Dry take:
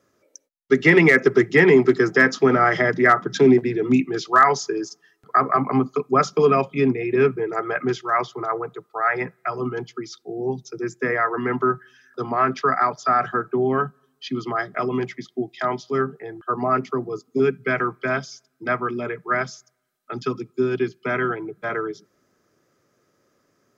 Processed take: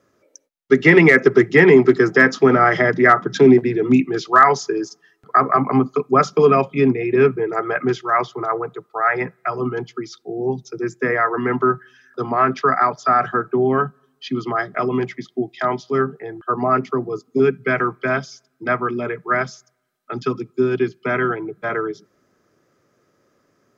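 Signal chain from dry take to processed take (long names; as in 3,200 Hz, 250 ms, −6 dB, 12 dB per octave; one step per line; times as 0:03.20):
high-shelf EQ 4,200 Hz −5.5 dB
level +3.5 dB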